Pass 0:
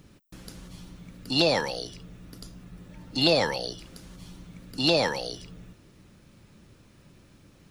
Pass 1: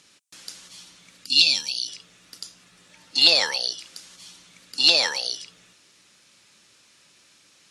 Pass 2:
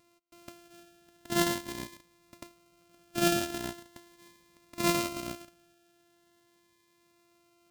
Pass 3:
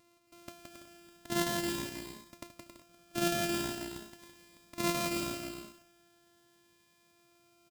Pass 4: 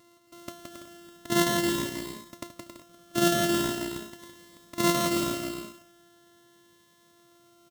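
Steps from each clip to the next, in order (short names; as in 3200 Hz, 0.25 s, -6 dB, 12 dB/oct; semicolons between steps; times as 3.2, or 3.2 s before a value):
weighting filter ITU-R 468; spectral gain 1.26–1.88, 310–2300 Hz -18 dB; gain -1 dB
sample sorter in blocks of 128 samples; cascading phaser rising 0.41 Hz; gain -8.5 dB
compressor 1.5:1, threshold -35 dBFS, peak gain reduction 5.5 dB; bouncing-ball echo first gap 0.17 s, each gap 0.6×, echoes 5
notch comb 800 Hz; gain +8.5 dB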